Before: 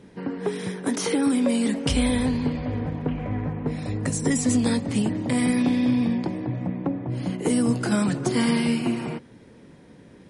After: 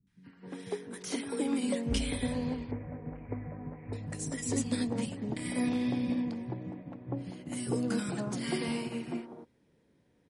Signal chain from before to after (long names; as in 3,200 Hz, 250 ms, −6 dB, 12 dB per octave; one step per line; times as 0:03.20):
0:02.64–0:03.86: elliptic low-pass filter 2,300 Hz, stop band 50 dB
three-band delay without the direct sound lows, highs, mids 70/260 ms, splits 210/1,200 Hz
expander for the loud parts 1.5 to 1, over −44 dBFS
level −6.5 dB